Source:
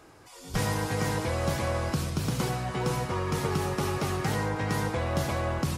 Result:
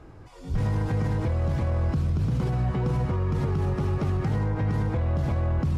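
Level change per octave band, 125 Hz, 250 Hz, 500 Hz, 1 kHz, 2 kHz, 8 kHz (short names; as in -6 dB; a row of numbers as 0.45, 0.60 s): +6.5 dB, +2.0 dB, -2.0 dB, -4.5 dB, -7.0 dB, under -15 dB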